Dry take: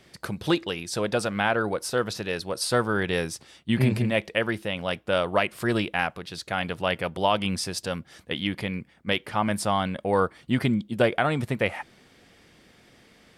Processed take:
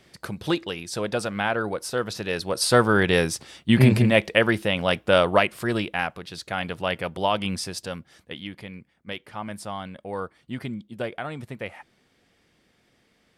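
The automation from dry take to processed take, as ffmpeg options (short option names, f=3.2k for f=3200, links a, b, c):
-af "volume=6dB,afade=t=in:st=2.07:d=0.75:silence=0.446684,afade=t=out:st=5.24:d=0.4:silence=0.473151,afade=t=out:st=7.52:d=0.99:silence=0.375837"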